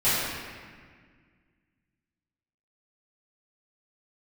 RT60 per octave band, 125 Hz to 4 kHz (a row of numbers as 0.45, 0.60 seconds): 2.5, 2.4, 1.8, 1.7, 1.8, 1.3 seconds